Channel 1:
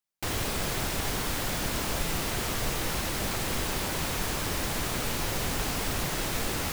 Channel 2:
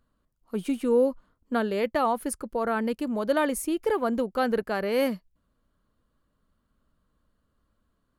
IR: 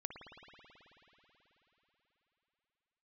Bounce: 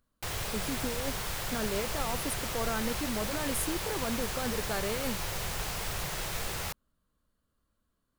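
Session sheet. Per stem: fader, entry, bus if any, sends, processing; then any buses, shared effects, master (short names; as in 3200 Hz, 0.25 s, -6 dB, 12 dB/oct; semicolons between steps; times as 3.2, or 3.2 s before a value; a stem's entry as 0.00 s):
-4.0 dB, 0.00 s, no send, bell 270 Hz -14.5 dB 0.59 oct
-8.0 dB, 0.00 s, no send, high shelf 4100 Hz +9 dB; negative-ratio compressor -26 dBFS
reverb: off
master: dry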